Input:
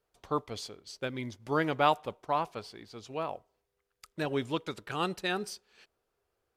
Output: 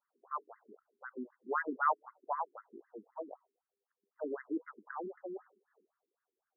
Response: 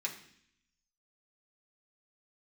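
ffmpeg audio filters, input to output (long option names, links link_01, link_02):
-af "aphaser=in_gain=1:out_gain=1:delay=1.4:decay=0.32:speed=0.68:type=sinusoidal,afftfilt=real='re*between(b*sr/1024,280*pow(1500/280,0.5+0.5*sin(2*PI*3.9*pts/sr))/1.41,280*pow(1500/280,0.5+0.5*sin(2*PI*3.9*pts/sr))*1.41)':imag='im*between(b*sr/1024,280*pow(1500/280,0.5+0.5*sin(2*PI*3.9*pts/sr))/1.41,280*pow(1500/280,0.5+0.5*sin(2*PI*3.9*pts/sr))*1.41)':win_size=1024:overlap=0.75,volume=-3dB"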